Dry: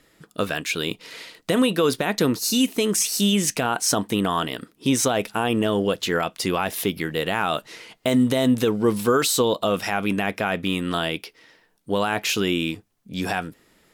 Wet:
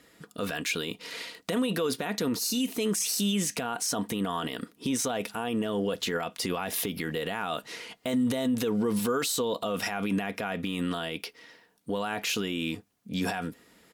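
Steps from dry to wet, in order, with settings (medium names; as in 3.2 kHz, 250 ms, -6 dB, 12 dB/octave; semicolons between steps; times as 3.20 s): high-pass 63 Hz; comb 4.2 ms, depth 30%; peak limiter -20 dBFS, peak gain reduction 11.5 dB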